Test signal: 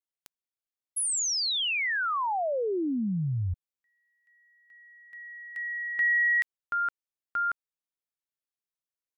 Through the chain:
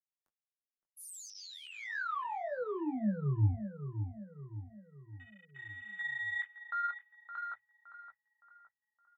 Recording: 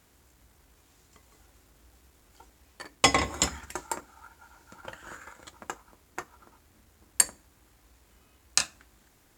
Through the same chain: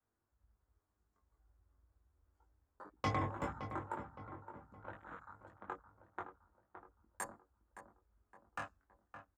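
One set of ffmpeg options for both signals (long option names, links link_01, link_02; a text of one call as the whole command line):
ffmpeg -i in.wav -filter_complex "[0:a]flanger=delay=19:depth=2.6:speed=2,highshelf=frequency=1900:width_type=q:width=1.5:gain=-11,bandreject=frequency=60:width_type=h:width=6,bandreject=frequency=120:width_type=h:width=6,bandreject=frequency=180:width_type=h:width=6,adynamicequalizer=threshold=0.002:dfrequency=120:dqfactor=1.5:tfrequency=120:tqfactor=1.5:attack=5:release=100:ratio=0.375:range=3:mode=boostabove:tftype=bell,acrossover=split=2200[link_01][link_02];[link_02]asoftclip=type=hard:threshold=-35.5dB[link_03];[link_01][link_03]amix=inputs=2:normalize=0,acrossover=split=280|1900[link_04][link_05][link_06];[link_05]acompressor=threshold=-33dB:ratio=6:attack=4.4:release=48:knee=2.83:detection=peak[link_07];[link_04][link_07][link_06]amix=inputs=3:normalize=0,flanger=delay=8.9:depth=1.8:regen=54:speed=0.27:shape=sinusoidal,afwtdn=0.00282,asplit=2[link_08][link_09];[link_09]adelay=566,lowpass=frequency=1700:poles=1,volume=-9dB,asplit=2[link_10][link_11];[link_11]adelay=566,lowpass=frequency=1700:poles=1,volume=0.48,asplit=2[link_12][link_13];[link_13]adelay=566,lowpass=frequency=1700:poles=1,volume=0.48,asplit=2[link_14][link_15];[link_15]adelay=566,lowpass=frequency=1700:poles=1,volume=0.48,asplit=2[link_16][link_17];[link_17]adelay=566,lowpass=frequency=1700:poles=1,volume=0.48[link_18];[link_08][link_10][link_12][link_14][link_16][link_18]amix=inputs=6:normalize=0" out.wav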